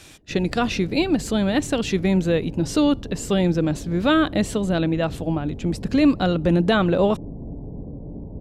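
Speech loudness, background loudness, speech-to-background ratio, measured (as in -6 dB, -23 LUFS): -21.5 LUFS, -36.5 LUFS, 15.0 dB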